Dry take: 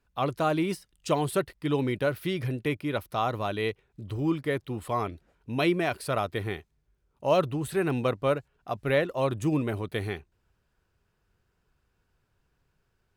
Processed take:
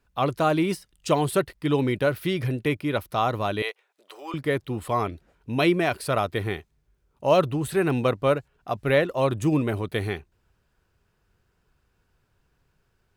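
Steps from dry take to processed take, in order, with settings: 3.62–4.34 HPF 570 Hz 24 dB/oct; gain +4 dB

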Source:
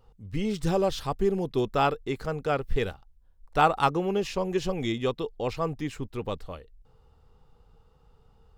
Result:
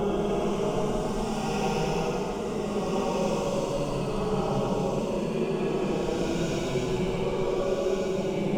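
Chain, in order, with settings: dark delay 0.631 s, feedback 58%, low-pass 470 Hz, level -4.5 dB; level quantiser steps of 15 dB; echoes that change speed 0.29 s, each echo +2 st, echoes 2; bell 4100 Hz -12 dB 0.24 oct; notch 1800 Hz, Q 9.2; on a send: split-band echo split 350 Hz, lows 0.198 s, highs 0.102 s, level -4.5 dB; on the sum: Paulstretch 14×, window 0.10 s, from 4.16

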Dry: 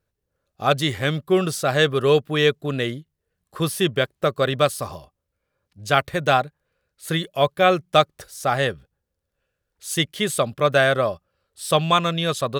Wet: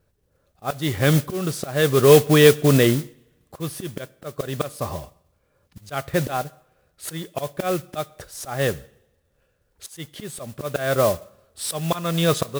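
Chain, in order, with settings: tilt shelf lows +4 dB, about 1300 Hz; auto swell 0.561 s; in parallel at +0.5 dB: limiter -17 dBFS, peak gain reduction 11.5 dB; on the sum: two-slope reverb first 0.77 s, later 2.3 s, from -25 dB, DRR 19 dB; modulation noise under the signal 14 dB; gain +1 dB

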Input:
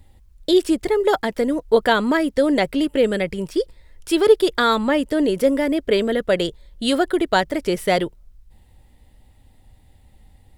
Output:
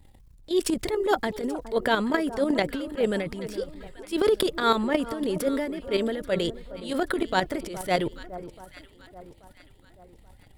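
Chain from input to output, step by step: level quantiser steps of 17 dB; transient shaper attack -10 dB, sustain +8 dB; echo with dull and thin repeats by turns 0.416 s, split 1200 Hz, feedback 64%, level -13.5 dB

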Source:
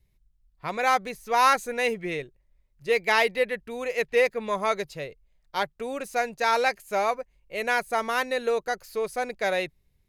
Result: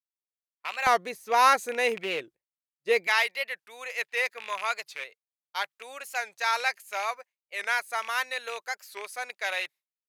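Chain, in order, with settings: rattling part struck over -39 dBFS, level -24 dBFS; HPF 1100 Hz 12 dB/oct, from 0.88 s 290 Hz, from 3.07 s 1100 Hz; expander -45 dBFS; record warp 45 rpm, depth 160 cents

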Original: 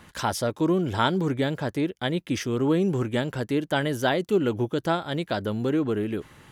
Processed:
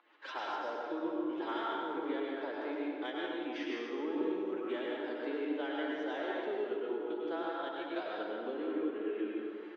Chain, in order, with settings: LPF 3600 Hz 24 dB/oct; on a send: echo 82 ms -19 dB; on the sum: pump 82 bpm, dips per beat 2, -14 dB, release 0.218 s; elliptic high-pass 300 Hz, stop band 70 dB; compressor 3:1, threshold -34 dBFS, peak gain reduction 12.5 dB; added harmonics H 7 -40 dB, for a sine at -17.5 dBFS; time stretch by phase-locked vocoder 1.5×; plate-style reverb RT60 2.2 s, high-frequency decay 0.6×, pre-delay 85 ms, DRR -4 dB; gain -6 dB

